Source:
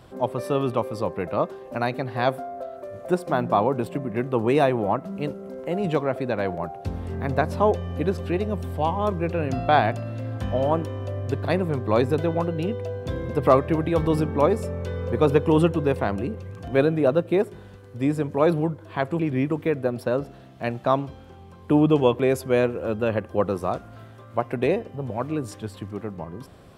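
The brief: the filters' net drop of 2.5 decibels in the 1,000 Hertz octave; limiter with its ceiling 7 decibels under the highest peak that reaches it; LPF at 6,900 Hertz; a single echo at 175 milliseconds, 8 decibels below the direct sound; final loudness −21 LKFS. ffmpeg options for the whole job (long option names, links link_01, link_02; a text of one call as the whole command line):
ffmpeg -i in.wav -af "lowpass=6900,equalizer=frequency=1000:width_type=o:gain=-3.5,alimiter=limit=-12dB:level=0:latency=1,aecho=1:1:175:0.398,volume=5dB" out.wav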